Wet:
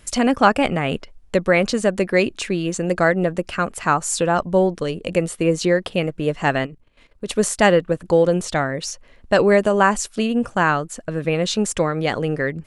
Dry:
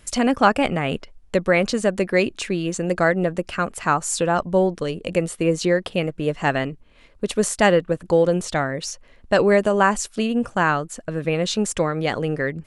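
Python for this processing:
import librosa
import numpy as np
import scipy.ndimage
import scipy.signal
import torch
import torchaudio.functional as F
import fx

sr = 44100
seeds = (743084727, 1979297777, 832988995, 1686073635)

y = fx.level_steps(x, sr, step_db=13, at=(6.65, 7.26), fade=0.02)
y = y * 10.0 ** (1.5 / 20.0)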